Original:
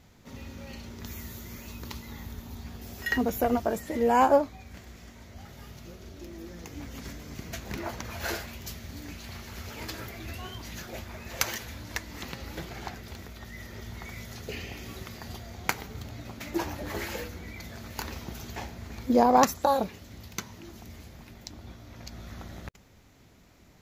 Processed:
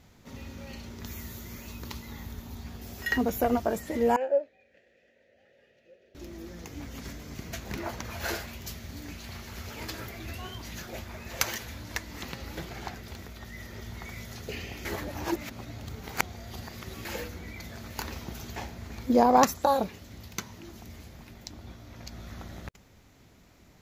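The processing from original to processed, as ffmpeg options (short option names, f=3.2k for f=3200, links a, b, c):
-filter_complex "[0:a]asettb=1/sr,asplit=3[a][b][c];[a]atrim=end=4.164[d];[b]atrim=start=4.16:end=6.15,asetpts=PTS-STARTPTS,afade=t=in:d=0.004:c=qsin,afade=t=out:st=1.986:d=0.004:c=qsin,asplit=3[e][f][g];[e]bandpass=f=530:t=q:w=8,volume=0dB[h];[f]bandpass=f=1.84k:t=q:w=8,volume=-6dB[i];[g]bandpass=f=2.48k:t=q:w=8,volume=-9dB[j];[h][i][j]amix=inputs=3:normalize=0[k];[c]atrim=start=6.146[l];[d][k]acrossfade=d=0.004:c1=hsin:c2=qsin[m];[m][l]acrossfade=d=0.004:c1=qsin:c2=hsin,asplit=3[n][o][p];[n]atrim=end=14.852[q];[o]atrim=start=14.848:end=17.052,asetpts=PTS-STARTPTS,areverse[r];[p]atrim=start=17.048[s];[q][r]acrossfade=d=0.004:c1=hsin:c2=hsin[t];[t][s]acrossfade=d=0.004:c1=hsin:c2=hsin"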